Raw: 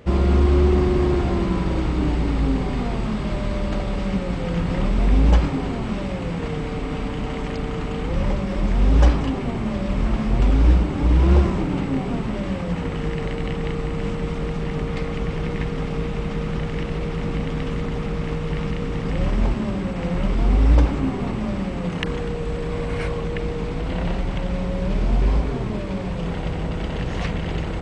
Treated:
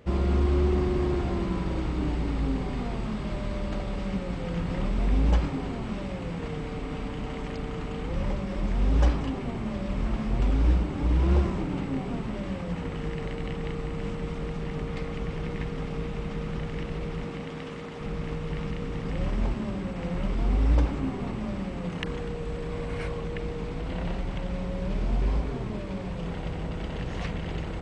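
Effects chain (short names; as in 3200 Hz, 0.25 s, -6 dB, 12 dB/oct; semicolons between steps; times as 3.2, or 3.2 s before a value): 17.23–18 HPF 170 Hz -> 400 Hz 6 dB/oct; gain -7 dB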